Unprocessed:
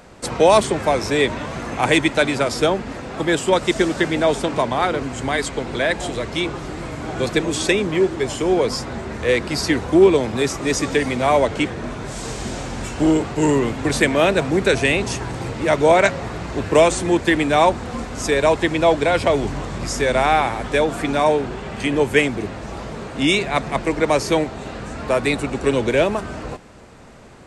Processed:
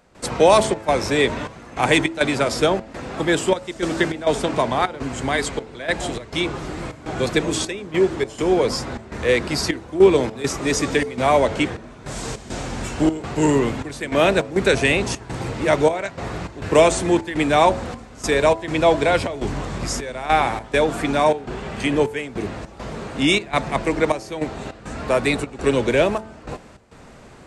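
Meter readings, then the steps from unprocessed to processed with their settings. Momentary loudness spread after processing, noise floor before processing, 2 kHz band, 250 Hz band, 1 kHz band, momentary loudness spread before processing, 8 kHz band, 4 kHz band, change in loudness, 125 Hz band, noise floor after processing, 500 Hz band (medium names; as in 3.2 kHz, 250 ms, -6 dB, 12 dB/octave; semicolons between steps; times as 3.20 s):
14 LU, -32 dBFS, -2.0 dB, -2.0 dB, -1.0 dB, 13 LU, -1.0 dB, -1.0 dB, -1.5 dB, -1.5 dB, -43 dBFS, -1.5 dB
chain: trance gate ".xxxx.xxxx..xx" 102 bpm -12 dB; de-hum 109.6 Hz, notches 9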